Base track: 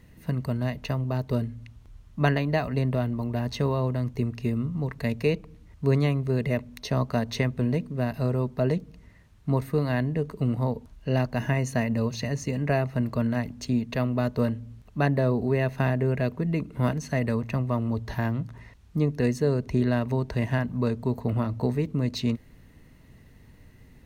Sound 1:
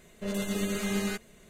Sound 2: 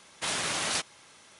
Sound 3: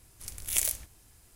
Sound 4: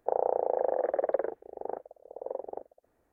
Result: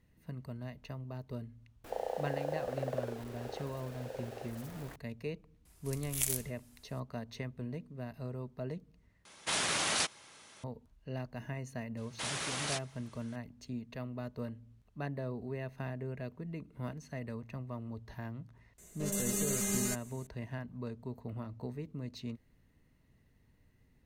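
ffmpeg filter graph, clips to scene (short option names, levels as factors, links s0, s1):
-filter_complex "[2:a]asplit=2[s0][s1];[0:a]volume=0.168[s2];[4:a]aeval=exprs='val(0)+0.5*0.02*sgn(val(0))':c=same[s3];[1:a]highshelf=f=4900:t=q:w=1.5:g=11.5[s4];[s2]asplit=2[s5][s6];[s5]atrim=end=9.254[s7];[s0]atrim=end=1.39,asetpts=PTS-STARTPTS,volume=0.841[s8];[s6]atrim=start=10.636[s9];[s3]atrim=end=3.12,asetpts=PTS-STARTPTS,volume=0.299,afade=t=in:d=0.004:c=hsin,afade=t=out:st=3.116:d=0.004:c=hsin,adelay=1840[s10];[3:a]atrim=end=1.35,asetpts=PTS-STARTPTS,volume=0.531,afade=t=in:d=0.004:c=hsin,afade=t=out:st=1.346:d=0.004:c=hsin,adelay=249165S[s11];[s1]atrim=end=1.39,asetpts=PTS-STARTPTS,volume=0.447,afade=t=in:d=0.004:c=hsin,afade=t=out:st=1.386:d=0.004:c=hsin,adelay=11970[s12];[s4]atrim=end=1.49,asetpts=PTS-STARTPTS,volume=0.501,afade=t=in:d=0.004:c=hsin,afade=t=out:st=1.486:d=0.004:c=hsin,adelay=18780[s13];[s7][s8]acrossfade=d=0.004:c1=hsin:c2=hsin[s14];[s14][s9]acrossfade=d=0.004:c1=hsin:c2=hsin[s15];[s15][s10][s11][s12][s13]amix=inputs=5:normalize=0"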